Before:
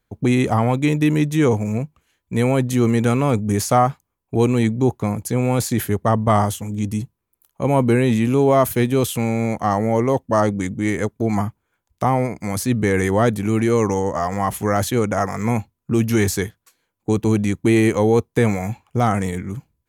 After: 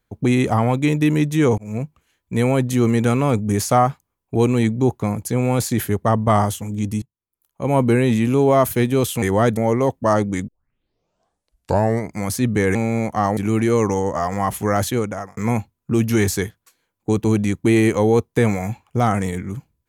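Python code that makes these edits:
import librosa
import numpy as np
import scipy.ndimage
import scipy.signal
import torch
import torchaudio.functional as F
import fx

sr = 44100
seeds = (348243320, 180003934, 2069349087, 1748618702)

y = fx.edit(x, sr, fx.fade_in_span(start_s=1.58, length_s=0.25),
    fx.fade_in_from(start_s=7.02, length_s=0.74, curve='qua', floor_db=-22.0),
    fx.swap(start_s=9.22, length_s=0.62, other_s=13.02, other_length_s=0.35),
    fx.tape_start(start_s=10.75, length_s=1.63),
    fx.fade_out_span(start_s=14.88, length_s=0.49), tone=tone)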